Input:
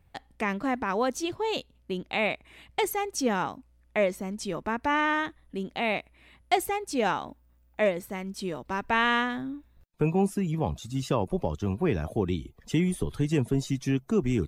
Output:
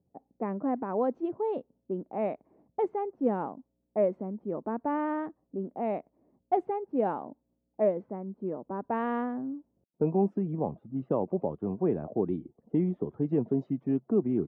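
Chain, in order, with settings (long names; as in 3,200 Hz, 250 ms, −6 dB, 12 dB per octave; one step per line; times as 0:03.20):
flat-topped band-pass 380 Hz, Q 0.62
low-pass that shuts in the quiet parts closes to 460 Hz, open at −22 dBFS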